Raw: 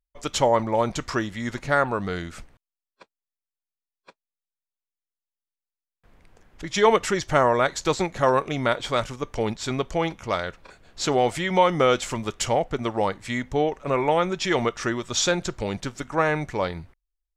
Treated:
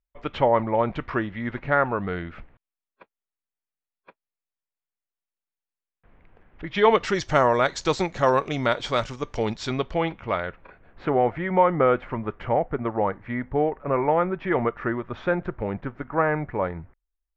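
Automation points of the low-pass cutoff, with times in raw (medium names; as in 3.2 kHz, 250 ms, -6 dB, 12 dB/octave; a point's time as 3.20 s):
low-pass 24 dB/octave
6.65 s 2.7 kHz
7.21 s 6.5 kHz
9.56 s 6.5 kHz
10.05 s 3.3 kHz
11.18 s 1.9 kHz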